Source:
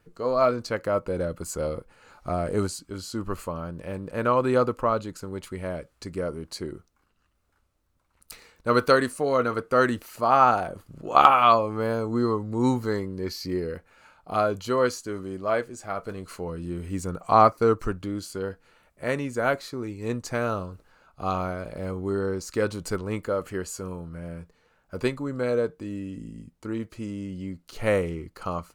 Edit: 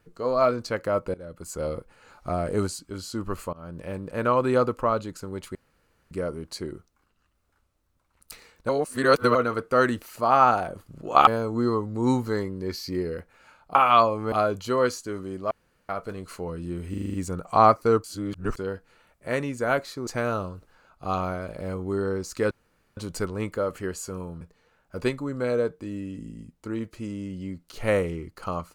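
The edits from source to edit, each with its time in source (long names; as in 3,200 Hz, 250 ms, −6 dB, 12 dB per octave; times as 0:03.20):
0:01.14–0:01.71: fade in, from −21.5 dB
0:03.53–0:03.78: fade in, from −23.5 dB
0:05.55–0:06.11: fill with room tone
0:08.69–0:09.35: reverse
0:11.27–0:11.84: move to 0:14.32
0:15.51–0:15.89: fill with room tone
0:16.90: stutter 0.04 s, 7 plays
0:17.80–0:18.33: reverse
0:19.83–0:20.24: remove
0:22.68: splice in room tone 0.46 s
0:24.12–0:24.40: remove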